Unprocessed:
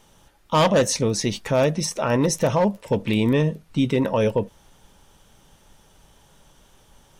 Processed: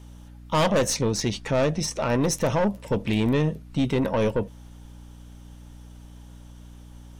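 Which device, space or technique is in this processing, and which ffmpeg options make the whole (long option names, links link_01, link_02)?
valve amplifier with mains hum: -filter_complex "[0:a]asettb=1/sr,asplit=3[link_01][link_02][link_03];[link_01]atrim=end=0.944[link_04];[link_02]atrim=start=0.94:end=2,asetpts=PTS-STARTPTS,afade=type=in:duration=0.004:curve=qsin,afade=type=out:start_time=1.056:duration=0.004:curve=qsin,lowpass=8400[link_05];[link_03]atrim=start=1.996[link_06];[link_04][link_05]acrossfade=duration=0.004:curve1=hsin:curve2=qsin[link_07];[link_07][link_06]acrossfade=duration=0.004:curve1=qsin:curve2=hsin,aeval=exprs='(tanh(6.31*val(0)+0.35)-tanh(0.35))/6.31':channel_layout=same,aeval=exprs='val(0)+0.00708*(sin(2*PI*60*n/s)+sin(2*PI*2*60*n/s)/2+sin(2*PI*3*60*n/s)/3+sin(2*PI*4*60*n/s)/4+sin(2*PI*5*60*n/s)/5)':channel_layout=same"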